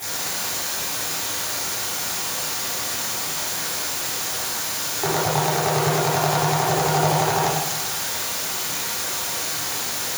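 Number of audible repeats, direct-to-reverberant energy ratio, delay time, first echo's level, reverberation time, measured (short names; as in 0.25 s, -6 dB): none, -10.0 dB, none, none, 1.1 s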